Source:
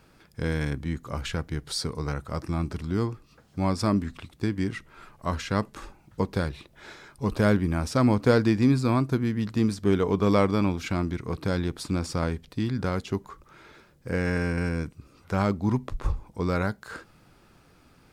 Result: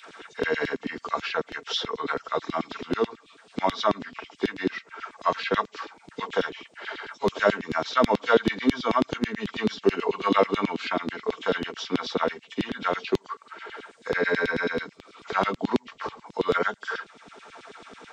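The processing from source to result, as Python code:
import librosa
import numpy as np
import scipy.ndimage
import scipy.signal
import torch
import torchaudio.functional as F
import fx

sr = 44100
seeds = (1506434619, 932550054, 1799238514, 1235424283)

y = fx.freq_compress(x, sr, knee_hz=2000.0, ratio=1.5)
y = fx.highpass(y, sr, hz=120.0, slope=6)
y = y + 0.45 * np.pad(y, (int(4.4 * sr / 1000.0), 0))[:len(y)]
y = fx.filter_lfo_highpass(y, sr, shape='saw_down', hz=9.2, low_hz=250.0, high_hz=3800.0, q=2.4)
y = fx.band_squash(y, sr, depth_pct=40)
y = y * librosa.db_to_amplitude(2.5)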